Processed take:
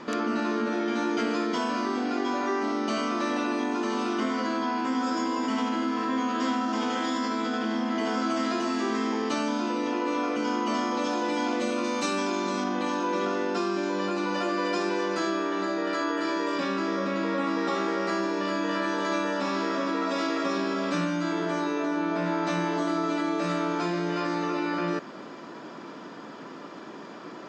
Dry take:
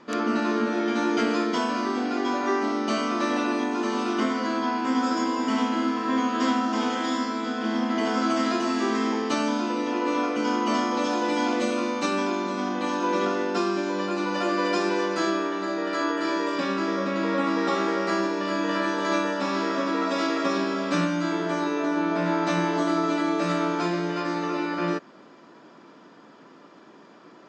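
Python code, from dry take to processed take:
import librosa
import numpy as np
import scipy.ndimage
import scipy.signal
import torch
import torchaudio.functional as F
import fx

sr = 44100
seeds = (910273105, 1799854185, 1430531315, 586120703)

p1 = fx.high_shelf(x, sr, hz=5500.0, db=10.0, at=(11.84, 12.64))
p2 = fx.over_compress(p1, sr, threshold_db=-35.0, ratio=-1.0)
p3 = p1 + (p2 * 10.0 ** (2.5 / 20.0))
y = p3 * 10.0 ** (-5.5 / 20.0)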